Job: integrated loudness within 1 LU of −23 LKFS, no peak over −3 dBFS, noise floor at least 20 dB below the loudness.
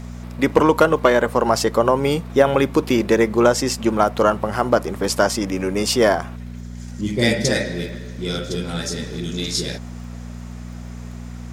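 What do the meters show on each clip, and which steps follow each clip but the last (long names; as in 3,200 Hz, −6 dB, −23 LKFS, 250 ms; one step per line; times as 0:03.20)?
crackle rate 29 per second; mains hum 60 Hz; hum harmonics up to 240 Hz; level of the hum −30 dBFS; integrated loudness −19.5 LKFS; sample peak −2.0 dBFS; target loudness −23.0 LKFS
→ click removal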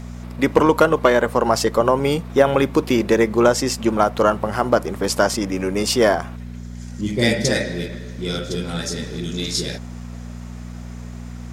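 crackle rate 0.087 per second; mains hum 60 Hz; hum harmonics up to 240 Hz; level of the hum −30 dBFS
→ hum removal 60 Hz, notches 4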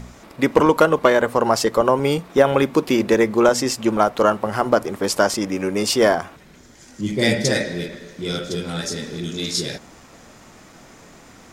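mains hum none found; integrated loudness −19.5 LKFS; sample peak −2.0 dBFS; target loudness −23.0 LKFS
→ level −3.5 dB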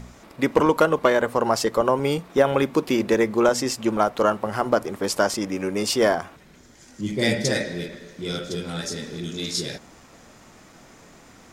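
integrated loudness −23.0 LKFS; sample peak −5.5 dBFS; background noise floor −50 dBFS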